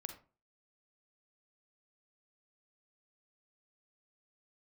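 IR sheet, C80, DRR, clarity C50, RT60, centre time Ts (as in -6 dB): 14.0 dB, 6.0 dB, 8.5 dB, 0.35 s, 13 ms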